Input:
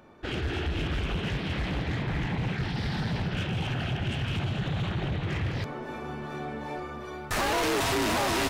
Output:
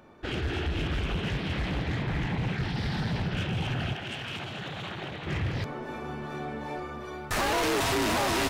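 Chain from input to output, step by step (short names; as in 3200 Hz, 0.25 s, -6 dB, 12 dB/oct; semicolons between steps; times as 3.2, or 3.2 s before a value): 3.93–5.27 HPF 480 Hz 6 dB/oct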